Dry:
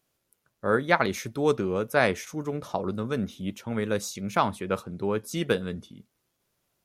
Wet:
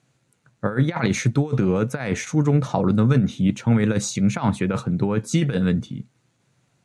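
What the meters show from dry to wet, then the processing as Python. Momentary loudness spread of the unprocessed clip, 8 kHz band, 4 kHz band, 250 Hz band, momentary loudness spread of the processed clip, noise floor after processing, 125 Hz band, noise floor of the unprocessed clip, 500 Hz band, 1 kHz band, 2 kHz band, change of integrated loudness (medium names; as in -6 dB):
9 LU, +7.5 dB, +2.5 dB, +10.5 dB, 6 LU, -68 dBFS, +14.5 dB, -78 dBFS, +0.5 dB, -1.0 dB, -1.0 dB, +6.5 dB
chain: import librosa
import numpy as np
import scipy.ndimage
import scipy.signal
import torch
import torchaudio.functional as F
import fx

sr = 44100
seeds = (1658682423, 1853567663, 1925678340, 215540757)

y = fx.low_shelf(x, sr, hz=210.0, db=6.0)
y = fx.over_compress(y, sr, threshold_db=-26.0, ratio=-0.5)
y = fx.cabinet(y, sr, low_hz=110.0, low_slope=12, high_hz=8000.0, hz=(130.0, 390.0, 600.0, 1100.0, 3200.0, 5200.0), db=(9, -6, -5, -4, -5, -8))
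y = F.gain(torch.from_numpy(y), 8.5).numpy()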